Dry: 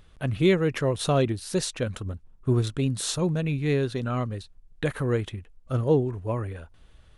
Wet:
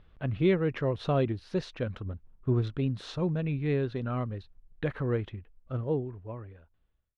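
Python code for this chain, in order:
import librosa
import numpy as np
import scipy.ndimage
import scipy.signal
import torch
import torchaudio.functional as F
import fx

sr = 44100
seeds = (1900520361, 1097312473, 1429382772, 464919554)

y = fx.fade_out_tail(x, sr, length_s=2.04)
y = fx.air_absorb(y, sr, metres=270.0)
y = y * librosa.db_to_amplitude(-3.5)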